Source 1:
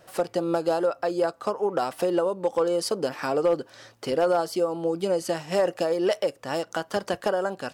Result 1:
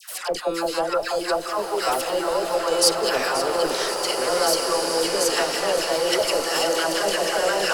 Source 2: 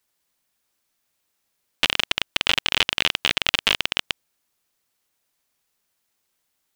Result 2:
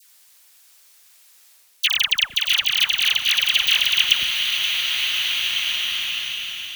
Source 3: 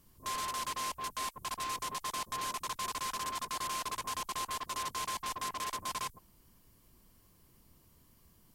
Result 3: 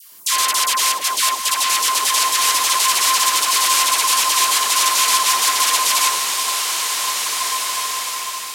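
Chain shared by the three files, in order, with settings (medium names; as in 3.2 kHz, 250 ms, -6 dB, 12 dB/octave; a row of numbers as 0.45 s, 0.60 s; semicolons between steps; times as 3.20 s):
high-pass 370 Hz 12 dB/octave; Chebyshev shaper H 4 -14 dB, 5 -15 dB, 6 -13 dB, 7 -25 dB, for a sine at -2 dBFS; reverse; compression 10:1, threshold -29 dBFS; reverse; tilt shelf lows -6.5 dB, about 1.4 kHz; phase dispersion lows, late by 124 ms, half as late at 990 Hz; on a send: two-band feedback delay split 2 kHz, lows 181 ms, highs 530 ms, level -12 dB; on the sum: swelling reverb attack 2080 ms, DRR 2 dB; peak normalisation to -2 dBFS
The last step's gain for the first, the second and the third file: +12.0 dB, +12.5 dB, +15.0 dB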